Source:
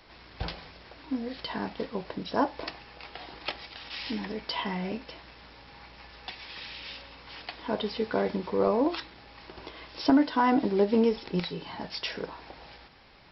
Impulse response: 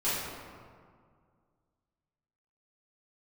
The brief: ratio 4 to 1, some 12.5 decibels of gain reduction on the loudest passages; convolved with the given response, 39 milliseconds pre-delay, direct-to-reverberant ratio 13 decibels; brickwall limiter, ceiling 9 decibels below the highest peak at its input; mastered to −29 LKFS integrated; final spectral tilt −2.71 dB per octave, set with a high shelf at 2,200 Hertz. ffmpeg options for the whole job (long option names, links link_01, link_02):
-filter_complex "[0:a]highshelf=frequency=2200:gain=3.5,acompressor=threshold=-32dB:ratio=4,alimiter=level_in=3.5dB:limit=-24dB:level=0:latency=1,volume=-3.5dB,asplit=2[link_01][link_02];[1:a]atrim=start_sample=2205,adelay=39[link_03];[link_02][link_03]afir=irnorm=-1:irlink=0,volume=-22.5dB[link_04];[link_01][link_04]amix=inputs=2:normalize=0,volume=10dB"